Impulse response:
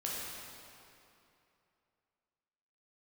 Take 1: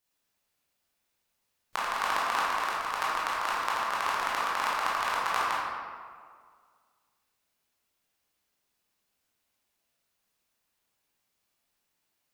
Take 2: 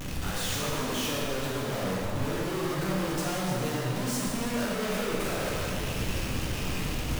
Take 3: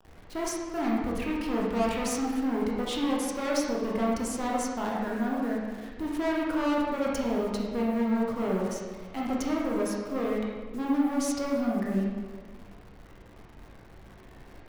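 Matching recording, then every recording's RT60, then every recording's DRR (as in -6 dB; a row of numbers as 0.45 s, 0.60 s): 2; 1.9 s, 2.8 s, 1.5 s; -7.0 dB, -6.0 dB, -4.0 dB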